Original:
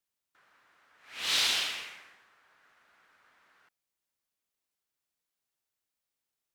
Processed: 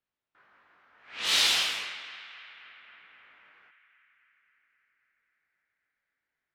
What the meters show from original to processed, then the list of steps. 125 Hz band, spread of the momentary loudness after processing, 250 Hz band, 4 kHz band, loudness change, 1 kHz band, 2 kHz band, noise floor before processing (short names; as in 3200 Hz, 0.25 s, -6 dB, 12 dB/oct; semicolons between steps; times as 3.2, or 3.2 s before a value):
n/a, 20 LU, +3.0 dB, +3.5 dB, +3.0 dB, +4.0 dB, +4.0 dB, under -85 dBFS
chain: chorus 0.67 Hz, delay 18 ms, depth 2.7 ms; low-pass opened by the level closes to 2600 Hz, open at -34 dBFS; narrowing echo 0.266 s, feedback 77%, band-pass 1700 Hz, level -13.5 dB; gain +6.5 dB